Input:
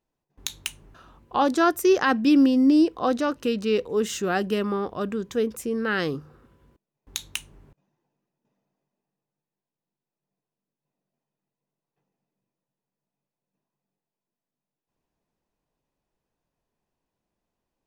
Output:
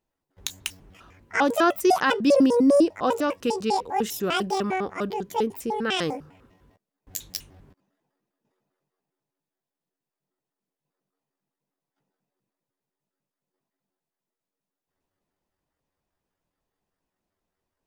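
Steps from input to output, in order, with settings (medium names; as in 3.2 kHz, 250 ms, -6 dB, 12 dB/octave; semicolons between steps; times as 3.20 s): pitch shift switched off and on +11 st, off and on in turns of 100 ms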